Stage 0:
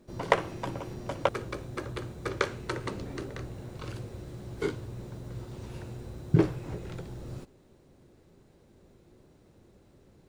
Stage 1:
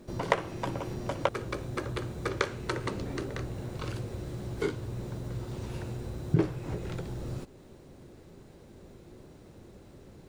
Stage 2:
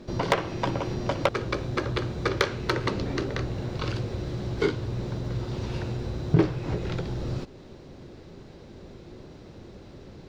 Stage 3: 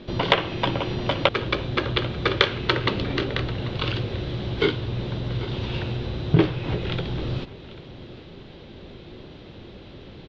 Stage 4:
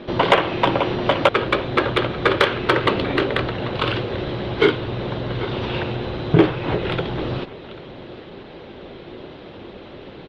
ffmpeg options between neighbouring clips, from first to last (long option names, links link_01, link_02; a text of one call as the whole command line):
ffmpeg -i in.wav -af "acompressor=threshold=-47dB:ratio=1.5,volume=7.5dB" out.wav
ffmpeg -i in.wav -af "highshelf=frequency=7100:width_type=q:width=1.5:gain=-13.5,asoftclip=type=hard:threshold=-18dB,volume=6dB" out.wav
ffmpeg -i in.wav -af "lowpass=frequency=3300:width_type=q:width=3.3,aecho=1:1:791:0.133,volume=2.5dB" out.wav
ffmpeg -i in.wav -filter_complex "[0:a]asplit=2[link_01][link_02];[link_02]highpass=frequency=720:poles=1,volume=16dB,asoftclip=type=tanh:threshold=-1dB[link_03];[link_01][link_03]amix=inputs=2:normalize=0,lowpass=frequency=1300:poles=1,volume=-6dB,volume=3dB" -ar 48000 -c:a libopus -b:a 32k out.opus